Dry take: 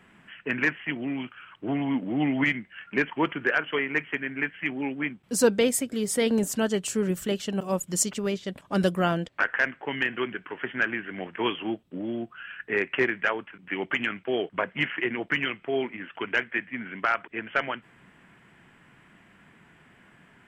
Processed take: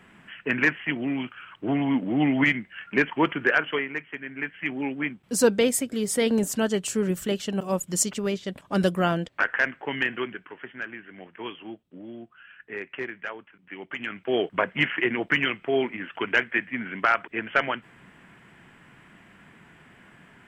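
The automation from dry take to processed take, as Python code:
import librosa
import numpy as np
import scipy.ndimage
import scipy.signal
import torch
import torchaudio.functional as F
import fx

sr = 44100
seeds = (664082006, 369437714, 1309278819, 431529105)

y = fx.gain(x, sr, db=fx.line((3.67, 3.0), (4.04, -7.5), (4.75, 1.0), (10.1, 1.0), (10.73, -9.0), (13.88, -9.0), (14.37, 3.5)))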